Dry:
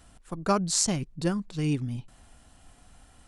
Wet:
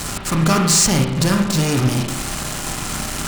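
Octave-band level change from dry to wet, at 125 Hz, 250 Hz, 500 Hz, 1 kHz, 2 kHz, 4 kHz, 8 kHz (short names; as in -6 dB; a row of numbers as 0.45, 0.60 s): +13.5, +11.5, +9.0, +10.5, +17.0, +14.0, +12.5 dB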